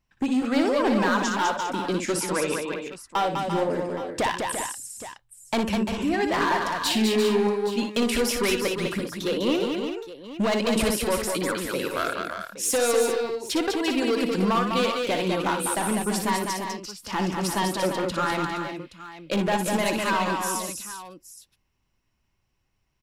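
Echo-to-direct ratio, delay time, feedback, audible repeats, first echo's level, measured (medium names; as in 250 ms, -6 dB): -1.0 dB, 59 ms, no regular repeats, 5, -7.5 dB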